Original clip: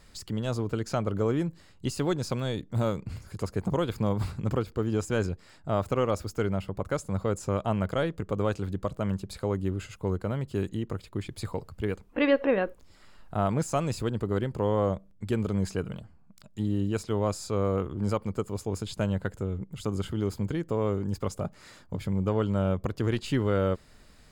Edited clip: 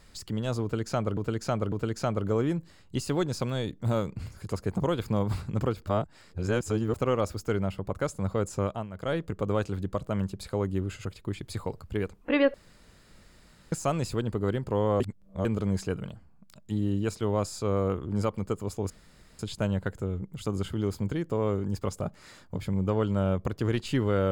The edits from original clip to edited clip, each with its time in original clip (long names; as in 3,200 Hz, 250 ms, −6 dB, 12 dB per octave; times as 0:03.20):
0:00.62–0:01.17: repeat, 3 plays
0:04.77–0:05.84: reverse
0:07.53–0:08.07: duck −14 dB, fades 0.25 s
0:09.95–0:10.93: remove
0:12.42–0:13.60: fill with room tone
0:14.88–0:15.33: reverse
0:18.78: splice in room tone 0.49 s